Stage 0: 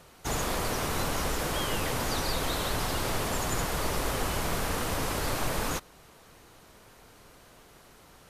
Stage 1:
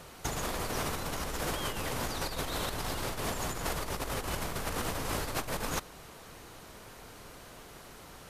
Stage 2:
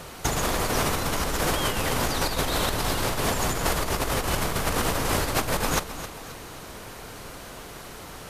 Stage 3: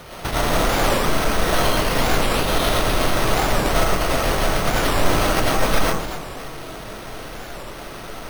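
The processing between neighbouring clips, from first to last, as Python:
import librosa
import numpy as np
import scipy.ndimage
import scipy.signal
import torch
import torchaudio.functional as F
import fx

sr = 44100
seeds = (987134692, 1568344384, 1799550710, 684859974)

y1 = fx.over_compress(x, sr, threshold_db=-33.0, ratio=-0.5)
y2 = fx.echo_feedback(y1, sr, ms=265, feedback_pct=38, wet_db=-12.5)
y2 = y2 * librosa.db_to_amplitude(9.0)
y3 = fx.rev_freeverb(y2, sr, rt60_s=0.69, hf_ratio=0.35, predelay_ms=60, drr_db=-5.0)
y3 = np.repeat(y3[::6], 6)[:len(y3)]
y3 = fx.record_warp(y3, sr, rpm=45.0, depth_cents=250.0)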